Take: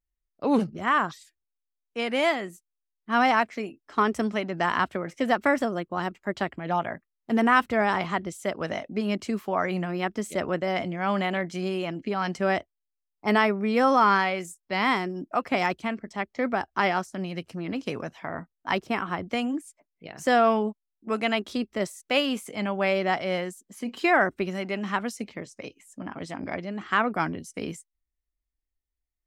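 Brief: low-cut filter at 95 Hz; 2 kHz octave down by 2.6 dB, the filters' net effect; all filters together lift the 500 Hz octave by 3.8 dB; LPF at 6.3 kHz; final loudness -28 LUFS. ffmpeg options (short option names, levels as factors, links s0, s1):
-af "highpass=95,lowpass=6300,equalizer=f=500:t=o:g=5,equalizer=f=2000:t=o:g=-3.5,volume=0.75"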